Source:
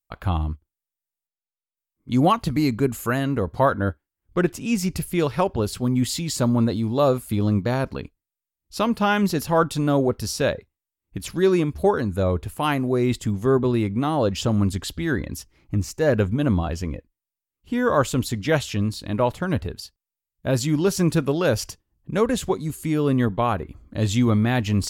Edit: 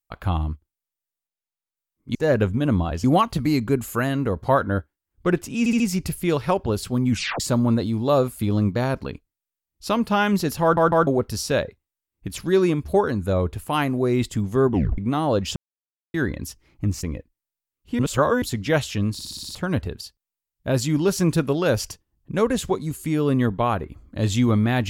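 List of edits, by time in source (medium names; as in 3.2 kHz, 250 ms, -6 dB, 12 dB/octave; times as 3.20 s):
4.70 s: stutter 0.07 s, 4 plays
6.00 s: tape stop 0.30 s
9.52 s: stutter in place 0.15 s, 3 plays
13.60 s: tape stop 0.28 s
14.46–15.04 s: mute
15.93–16.82 s: move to 2.15 s
17.78–18.21 s: reverse
18.92 s: stutter in place 0.06 s, 7 plays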